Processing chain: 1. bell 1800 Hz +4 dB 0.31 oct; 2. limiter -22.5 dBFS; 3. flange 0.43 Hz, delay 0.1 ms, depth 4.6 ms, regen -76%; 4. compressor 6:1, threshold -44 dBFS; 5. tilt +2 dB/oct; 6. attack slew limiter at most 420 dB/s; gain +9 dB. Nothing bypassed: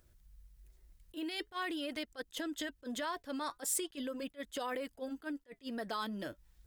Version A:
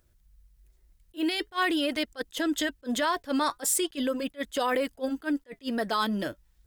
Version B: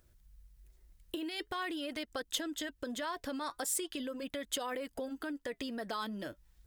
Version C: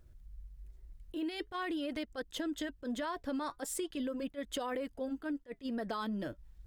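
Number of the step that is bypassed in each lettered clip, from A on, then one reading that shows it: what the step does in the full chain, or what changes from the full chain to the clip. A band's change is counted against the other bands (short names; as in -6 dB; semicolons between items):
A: 4, mean gain reduction 8.5 dB; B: 6, 4 kHz band +2.0 dB; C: 5, 8 kHz band -5.5 dB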